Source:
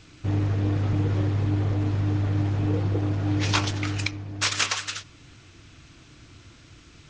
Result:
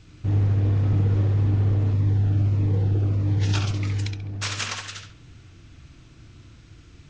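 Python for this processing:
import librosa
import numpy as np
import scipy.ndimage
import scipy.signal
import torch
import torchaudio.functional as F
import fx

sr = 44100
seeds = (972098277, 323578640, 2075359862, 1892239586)

y = fx.low_shelf(x, sr, hz=240.0, db=9.5)
y = fx.echo_filtered(y, sr, ms=68, feedback_pct=33, hz=4600.0, wet_db=-4.0)
y = fx.notch_cascade(y, sr, direction='falling', hz=1.6, at=(1.93, 4.24))
y = F.gain(torch.from_numpy(y), -5.5).numpy()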